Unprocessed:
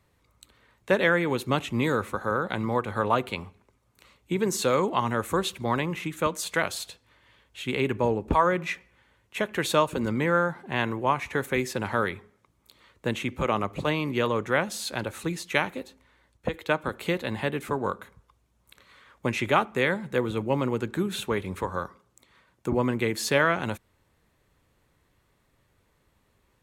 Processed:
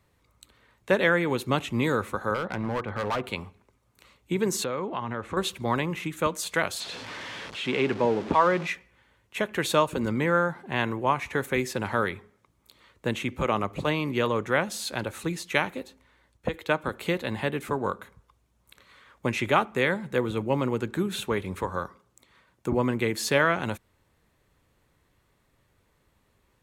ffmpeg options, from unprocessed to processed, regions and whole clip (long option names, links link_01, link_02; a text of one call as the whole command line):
ffmpeg -i in.wav -filter_complex "[0:a]asettb=1/sr,asplit=3[link_01][link_02][link_03];[link_01]atrim=end=2.344[link_04];[link_02]atrim=start=2.34:end=3.24,asetpts=PTS-STARTPTS,afade=type=in:duration=0.004:curve=qsin,afade=type=out:start_time=0.896:duration=0.004:curve=qsin,lowpass=2700,volume=24.5dB,asoftclip=hard,volume=-24.5dB[link_05];[link_03]atrim=start=3.236[link_06];[link_04][link_05]acrossfade=duration=0.004:curve1=hsin:curve2=qsin[link_07];[link_07][link_06]acrossfade=duration=0.004:curve1=qsin:curve2=hsin,asettb=1/sr,asplit=3[link_08][link_09][link_10];[link_08]atrim=end=4.644[link_11];[link_09]atrim=start=4.64:end=5.37,asetpts=PTS-STARTPTS,afade=type=in:duration=0.004:curve=qsin,afade=type=out:start_time=0.726:duration=0.004:curve=qsin,lowpass=3300,acompressor=threshold=-29dB:ratio=2.5:attack=3.2:release=140:knee=1:detection=peak[link_12];[link_10]atrim=start=5.366[link_13];[link_11][link_12]acrossfade=duration=0.004:curve1=hsin:curve2=qsin[link_14];[link_14][link_13]acrossfade=duration=0.004:curve1=qsin:curve2=hsin,asettb=1/sr,asplit=3[link_15][link_16][link_17];[link_15]atrim=end=6.804[link_18];[link_16]atrim=start=6.8:end=8.67,asetpts=PTS-STARTPTS,afade=type=in:duration=0.004:curve=qsin,afade=type=out:start_time=1.866:duration=0.004:curve=qsin,aeval=exprs='val(0)+0.5*0.0266*sgn(val(0))':channel_layout=same,highpass=160,lowpass=4800[link_19];[link_17]atrim=start=8.666[link_20];[link_18][link_19]acrossfade=duration=0.004:curve1=hsin:curve2=qsin[link_21];[link_21][link_20]acrossfade=duration=0.004:curve1=qsin:curve2=hsin" out.wav